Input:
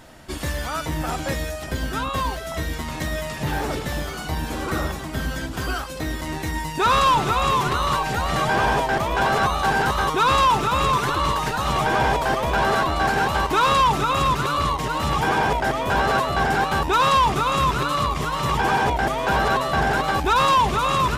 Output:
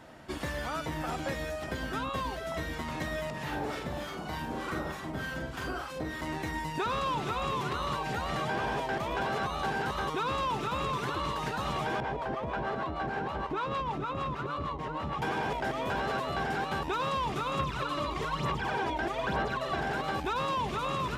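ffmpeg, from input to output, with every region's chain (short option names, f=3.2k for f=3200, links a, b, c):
-filter_complex "[0:a]asettb=1/sr,asplit=3[a][b][c];[a]atrim=end=3.304[d];[b]atrim=start=3.3:end=6.21,asetpts=PTS-STARTPTS,afade=t=in:d=0.004:c=qsin,afade=t=out:st=2.906:d=0.004:c=qsin,acrossover=split=940[e][f];[e]aeval=exprs='val(0)*(1-0.7/2+0.7/2*cos(2*PI*3.3*n/s))':c=same[g];[f]aeval=exprs='val(0)*(1-0.7/2-0.7/2*cos(2*PI*3.3*n/s))':c=same[h];[g][h]amix=inputs=2:normalize=0,asplit=2[i][j];[j]adelay=44,volume=-4dB[k];[i][k]amix=inputs=2:normalize=0,atrim=end_sample=128331[l];[c]atrim=start=6.206[m];[d][l]acrossfade=d=0.004:c1=hsin:c2=qsin[n];[n][m]acrossfade=d=0.004:c1=qsin:c2=hsin,asettb=1/sr,asplit=3[o][p][q];[o]atrim=end=12.004[r];[p]atrim=start=12:end=15.22,asetpts=PTS-STARTPTS,afade=t=in:d=0.004:c=qsin,afade=t=out:st=3.216:d=0.004:c=qsin,lowpass=f=1.6k:p=1,acrossover=split=550[s][t];[s]aeval=exprs='val(0)*(1-0.7/2+0.7/2*cos(2*PI*6.5*n/s))':c=same[u];[t]aeval=exprs='val(0)*(1-0.7/2-0.7/2*cos(2*PI*6.5*n/s))':c=same[v];[u][v]amix=inputs=2:normalize=0[w];[q]atrim=start=15.216[x];[r][w]acrossfade=d=0.004:c1=hsin:c2=qsin[y];[y][x]acrossfade=d=0.004:c1=qsin:c2=hsin,asettb=1/sr,asplit=3[z][aa][ab];[z]atrim=end=17.594[ac];[aa]atrim=start=17.59:end=19.8,asetpts=PTS-STARTPTS,afade=t=in:d=0.004:c=qsin,afade=t=out:st=2.206:d=0.004:c=qsin,aphaser=in_gain=1:out_gain=1:delay=3.3:decay=0.6:speed=1.1:type=sinusoidal,highshelf=f=8.7k:g=-6.5[ad];[ab]atrim=start=19.796[ae];[ac][ad]acrossfade=d=0.004:c1=hsin:c2=qsin[af];[af][ae]acrossfade=d=0.004:c1=qsin:c2=hsin,highpass=f=120:p=1,highshelf=f=4.1k:g=-12,acrossover=split=600|2000[ag][ah][ai];[ag]acompressor=threshold=-31dB:ratio=4[aj];[ah]acompressor=threshold=-34dB:ratio=4[ak];[ai]acompressor=threshold=-37dB:ratio=4[al];[aj][ak][al]amix=inputs=3:normalize=0,volume=-3dB"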